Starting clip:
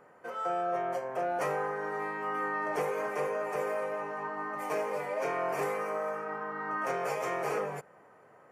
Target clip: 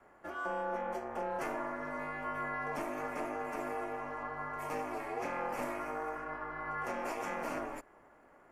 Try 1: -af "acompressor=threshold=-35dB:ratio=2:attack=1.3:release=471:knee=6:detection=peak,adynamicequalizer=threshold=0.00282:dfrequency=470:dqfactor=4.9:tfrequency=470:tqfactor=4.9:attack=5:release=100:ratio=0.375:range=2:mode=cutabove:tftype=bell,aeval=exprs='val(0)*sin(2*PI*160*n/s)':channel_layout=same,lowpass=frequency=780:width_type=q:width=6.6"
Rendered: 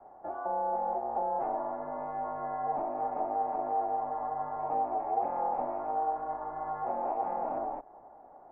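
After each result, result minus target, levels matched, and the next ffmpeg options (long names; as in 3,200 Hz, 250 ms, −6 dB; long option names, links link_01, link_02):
downward compressor: peak gain reduction +3.5 dB; 1,000 Hz band +3.0 dB
-af "acompressor=threshold=-27.5dB:ratio=2:attack=1.3:release=471:knee=6:detection=peak,adynamicequalizer=threshold=0.00282:dfrequency=470:dqfactor=4.9:tfrequency=470:tqfactor=4.9:attack=5:release=100:ratio=0.375:range=2:mode=cutabove:tftype=bell,aeval=exprs='val(0)*sin(2*PI*160*n/s)':channel_layout=same,lowpass=frequency=780:width_type=q:width=6.6"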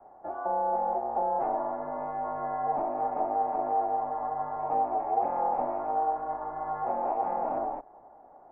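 1,000 Hz band +3.0 dB
-af "acompressor=threshold=-27.5dB:ratio=2:attack=1.3:release=471:knee=6:detection=peak,adynamicequalizer=threshold=0.00282:dfrequency=470:dqfactor=4.9:tfrequency=470:tqfactor=4.9:attack=5:release=100:ratio=0.375:range=2:mode=cutabove:tftype=bell,aeval=exprs='val(0)*sin(2*PI*160*n/s)':channel_layout=same"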